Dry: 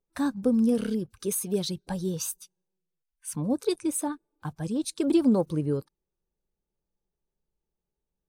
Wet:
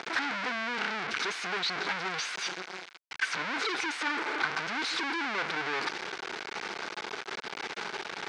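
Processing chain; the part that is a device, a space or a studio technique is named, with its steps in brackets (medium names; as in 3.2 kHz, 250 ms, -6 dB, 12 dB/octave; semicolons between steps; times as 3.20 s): home computer beeper (one-bit comparator; cabinet simulation 540–4900 Hz, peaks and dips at 570 Hz -9 dB, 1.5 kHz +8 dB, 2.2 kHz +7 dB); trim +2 dB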